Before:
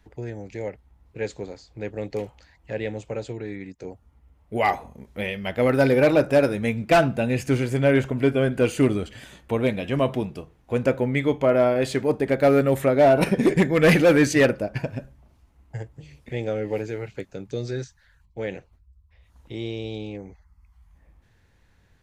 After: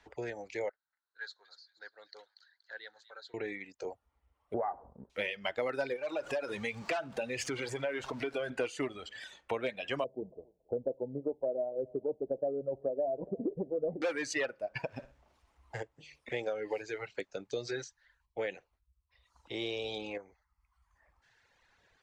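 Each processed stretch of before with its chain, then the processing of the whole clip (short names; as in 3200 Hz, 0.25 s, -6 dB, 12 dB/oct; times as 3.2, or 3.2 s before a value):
0.69–3.34 double band-pass 2500 Hz, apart 1.4 oct + thin delay 0.237 s, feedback 43%, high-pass 2600 Hz, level -6.5 dB
4.54–5.1 steep low-pass 1600 Hz 48 dB/oct + compressor 2:1, threshold -26 dBFS + tilt shelf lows +7 dB, about 840 Hz
5.96–8.5 zero-crossing step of -34 dBFS + compressor 4:1, threshold -24 dBFS
10.04–14.02 steep low-pass 650 Hz + thinning echo 0.279 s, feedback 17%, high-pass 510 Hz, level -19 dB
14.89–15.8 G.711 law mismatch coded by mu + flutter echo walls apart 10.3 m, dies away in 0.32 s
19.61–20.18 median filter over 3 samples + high shelf 7200 Hz +5 dB + fast leveller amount 70%
whole clip: reverb removal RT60 1.8 s; three-band isolator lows -17 dB, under 410 Hz, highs -23 dB, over 7900 Hz; compressor 6:1, threshold -34 dBFS; gain +2.5 dB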